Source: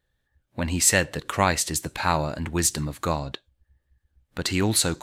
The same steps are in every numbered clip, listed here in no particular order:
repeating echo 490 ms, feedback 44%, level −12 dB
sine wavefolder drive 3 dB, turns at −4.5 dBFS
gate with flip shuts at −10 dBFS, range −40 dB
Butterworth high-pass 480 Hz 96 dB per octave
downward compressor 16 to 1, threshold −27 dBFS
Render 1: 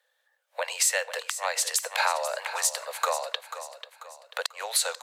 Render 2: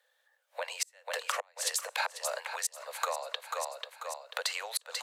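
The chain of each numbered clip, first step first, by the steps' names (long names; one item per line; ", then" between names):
downward compressor, then sine wavefolder, then Butterworth high-pass, then gate with flip, then repeating echo
gate with flip, then sine wavefolder, then repeating echo, then downward compressor, then Butterworth high-pass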